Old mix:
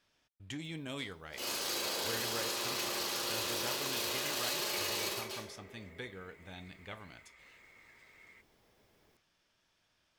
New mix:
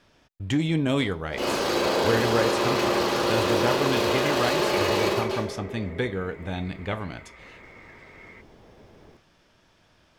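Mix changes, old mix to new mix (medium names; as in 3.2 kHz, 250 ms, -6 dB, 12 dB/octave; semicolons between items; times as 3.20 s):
speech: add treble shelf 4.3 kHz +11.5 dB; master: remove pre-emphasis filter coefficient 0.9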